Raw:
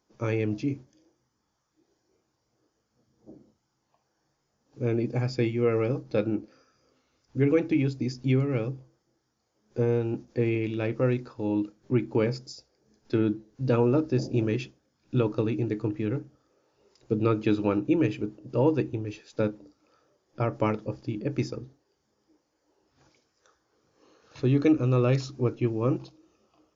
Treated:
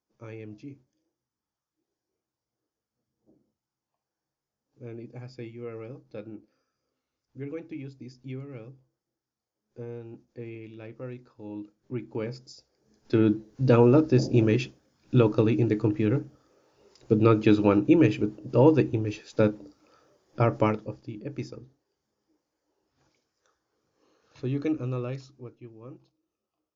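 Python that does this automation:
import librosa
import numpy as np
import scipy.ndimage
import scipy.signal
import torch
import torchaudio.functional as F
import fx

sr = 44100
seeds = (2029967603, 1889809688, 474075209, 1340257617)

y = fx.gain(x, sr, db=fx.line((11.1, -14.0), (12.4, -6.5), (13.33, 4.5), (20.55, 4.5), (21.03, -6.5), (24.87, -6.5), (25.59, -19.5)))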